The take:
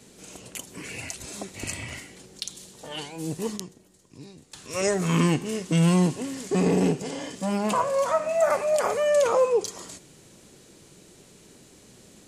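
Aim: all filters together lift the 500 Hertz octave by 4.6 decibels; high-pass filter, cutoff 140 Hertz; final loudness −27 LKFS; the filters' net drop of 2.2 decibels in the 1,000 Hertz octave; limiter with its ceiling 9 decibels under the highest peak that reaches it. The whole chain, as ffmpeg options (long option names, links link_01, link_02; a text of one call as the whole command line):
ffmpeg -i in.wav -af "highpass=140,equalizer=frequency=500:width_type=o:gain=7,equalizer=frequency=1000:width_type=o:gain=-5,volume=-1dB,alimiter=limit=-17dB:level=0:latency=1" out.wav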